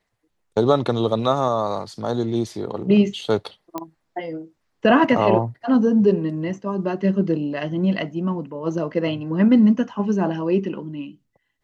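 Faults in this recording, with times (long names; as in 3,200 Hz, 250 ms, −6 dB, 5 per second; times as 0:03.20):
0:03.78: click −14 dBFS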